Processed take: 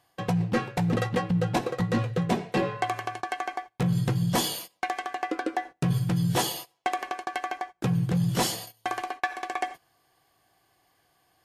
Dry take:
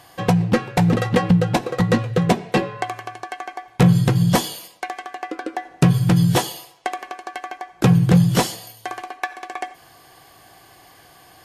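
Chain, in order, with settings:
noise gate −37 dBFS, range −19 dB
reversed playback
downward compressor 10 to 1, threshold −22 dBFS, peak gain reduction 13 dB
reversed playback

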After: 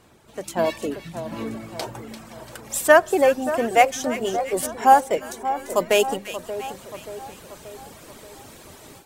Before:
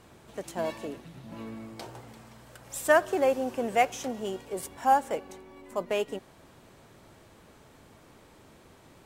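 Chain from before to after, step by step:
high-shelf EQ 4,200 Hz +2.5 dB, from 0:05.32 +11.5 dB
convolution reverb RT60 1.1 s, pre-delay 4 ms, DRR 17.5 dB
reverb reduction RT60 0.98 s
mains-hum notches 50/100/150/200 Hz
echo with a time of its own for lows and highs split 1,500 Hz, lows 581 ms, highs 343 ms, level −12 dB
automatic gain control gain up to 11 dB

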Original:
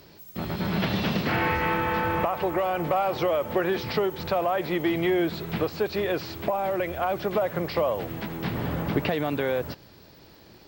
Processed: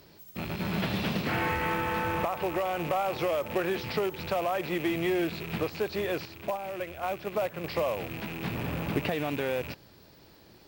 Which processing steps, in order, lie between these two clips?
loose part that buzzes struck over −39 dBFS, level −26 dBFS
0:06.25–0:07.64: noise gate −25 dBFS, range −6 dB
in parallel at −7 dB: log-companded quantiser 4 bits
on the sum: level −7.5 dB

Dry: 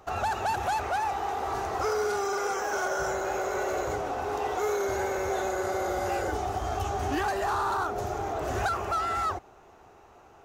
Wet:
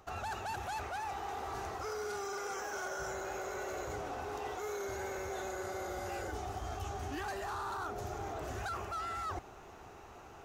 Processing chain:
parametric band 630 Hz −4.5 dB 2.1 octaves
reversed playback
downward compressor 4 to 1, threshold −44 dBFS, peak gain reduction 14.5 dB
reversed playback
level +4.5 dB

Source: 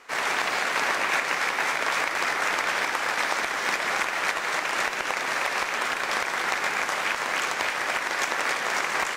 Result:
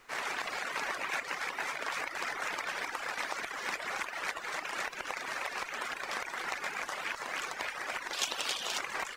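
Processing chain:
reverb reduction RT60 0.88 s
0:08.13–0:08.78: high shelf with overshoot 2,500 Hz +7 dB, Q 3
background noise pink −60 dBFS
level −8.5 dB

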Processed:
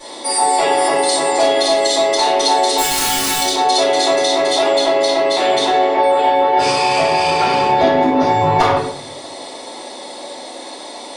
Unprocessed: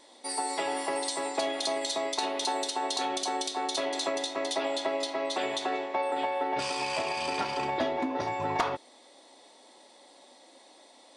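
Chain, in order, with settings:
0:02.77–0:03.40: spectral envelope flattened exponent 0.1
in parallel at −1 dB: compressor whose output falls as the input rises −41 dBFS, ratio −1
on the sum: rectangular room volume 100 cubic metres, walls mixed, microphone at 4.3 metres
level −1.5 dB

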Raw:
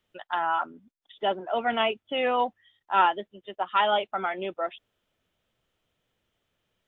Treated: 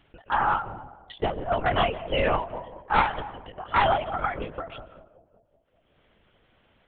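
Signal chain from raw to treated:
wavefolder on the positive side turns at −19.5 dBFS
0:02.22–0:04.40: high-pass filter 460 Hz
noise gate −53 dBFS, range −40 dB
low-pass filter 2,800 Hz 12 dB per octave
upward compression, threshold −29 dBFS
bucket-brigade delay 189 ms, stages 1,024, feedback 57%, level −17 dB
convolution reverb RT60 1.1 s, pre-delay 75 ms, DRR 17.5 dB
linear-prediction vocoder at 8 kHz whisper
every ending faded ahead of time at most 120 dB per second
level +4 dB

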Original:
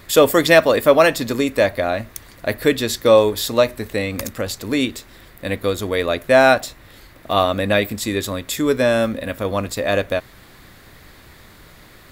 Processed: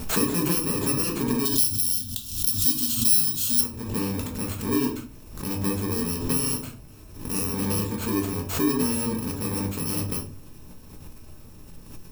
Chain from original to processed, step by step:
samples in bit-reversed order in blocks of 64 samples
0:01.45–0:03.61: drawn EQ curve 110 Hz 0 dB, 180 Hz −6 dB, 250 Hz +1 dB, 450 Hz −20 dB, 640 Hz −24 dB, 1,300 Hz −5 dB, 2,200 Hz −11 dB, 3,200 Hz +15 dB
rectangular room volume 220 cubic metres, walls furnished, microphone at 1.5 metres
downward compressor 2 to 1, threshold −16 dBFS, peak gain reduction 13.5 dB
tilt shelving filter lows +4.5 dB, about 1,400 Hz
background raised ahead of every attack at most 77 dB per second
level −7 dB

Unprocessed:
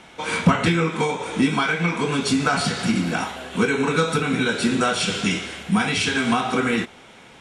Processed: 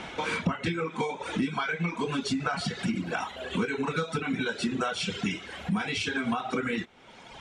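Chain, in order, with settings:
reverb reduction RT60 1.3 s
downward compressor 3 to 1, threshold −39 dBFS, peak gain reduction 21 dB
high-frequency loss of the air 65 metres
level +7.5 dB

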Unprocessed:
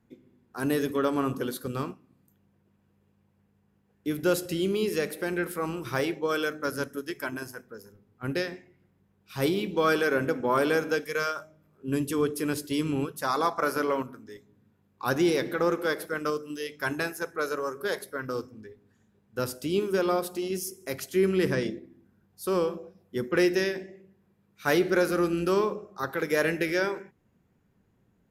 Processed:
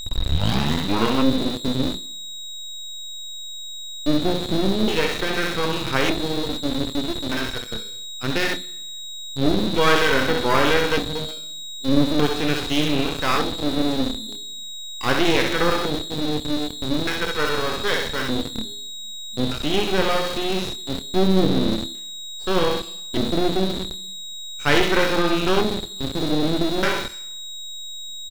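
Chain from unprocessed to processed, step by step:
turntable start at the beginning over 1.27 s
mains-hum notches 60/120/180 Hz
feedback echo with a high-pass in the loop 64 ms, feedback 51%, high-pass 490 Hz, level −3.5 dB
auto-filter low-pass square 0.41 Hz 270–3,200 Hz
in parallel at −6 dB: comparator with hysteresis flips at −35 dBFS
on the sum: downward expander −56 dBFS
double-tracking delay 27 ms −10.5 dB
steady tone 3,800 Hz −33 dBFS
half-wave rectification
on a send at −15 dB: convolution reverb RT60 1.0 s, pre-delay 3 ms
on the sum: level +6.5 dB

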